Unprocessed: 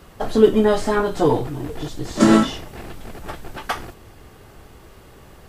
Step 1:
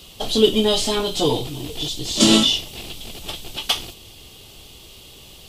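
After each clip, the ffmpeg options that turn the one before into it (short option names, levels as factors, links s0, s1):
-af "highshelf=f=2300:t=q:w=3:g=11.5,volume=0.75"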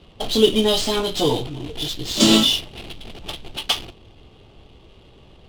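-af "adynamicsmooth=sensitivity=6.5:basefreq=1200"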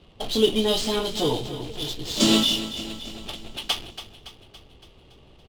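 -af "aecho=1:1:282|564|846|1128|1410|1692:0.224|0.125|0.0702|0.0393|0.022|0.0123,volume=0.596"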